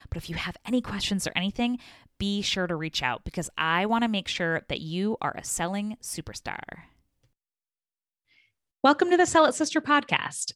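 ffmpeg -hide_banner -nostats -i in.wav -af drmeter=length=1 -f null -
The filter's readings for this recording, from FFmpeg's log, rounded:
Channel 1: DR: 13.6
Overall DR: 13.6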